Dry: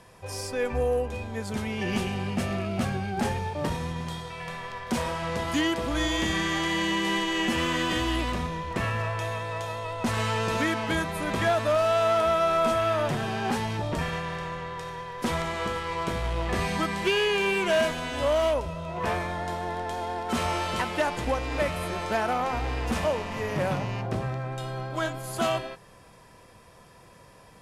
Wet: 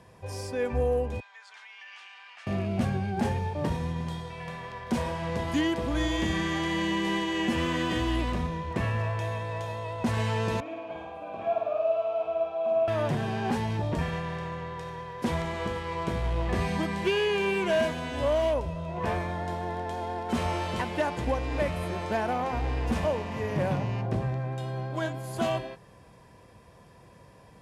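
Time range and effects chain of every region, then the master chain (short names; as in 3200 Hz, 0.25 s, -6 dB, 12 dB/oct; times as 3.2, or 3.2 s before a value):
1.2–2.47 HPF 1200 Hz 24 dB/oct + air absorption 110 m + compressor 2.5:1, threshold -41 dBFS
10.6–12.88 vowel filter a + low shelf 270 Hz +10.5 dB + flutter echo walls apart 8.9 m, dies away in 1.1 s
whole clip: HPF 55 Hz; tilt -1.5 dB/oct; notch 1300 Hz, Q 12; gain -2.5 dB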